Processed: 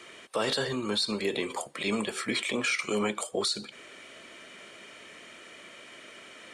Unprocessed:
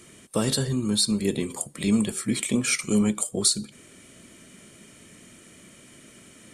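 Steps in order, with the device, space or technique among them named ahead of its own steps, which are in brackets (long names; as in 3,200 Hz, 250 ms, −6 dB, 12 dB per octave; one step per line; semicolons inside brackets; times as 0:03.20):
DJ mixer with the lows and highs turned down (three-way crossover with the lows and the highs turned down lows −21 dB, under 430 Hz, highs −19 dB, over 4,600 Hz; brickwall limiter −26.5 dBFS, peak gain reduction 10.5 dB)
level +7.5 dB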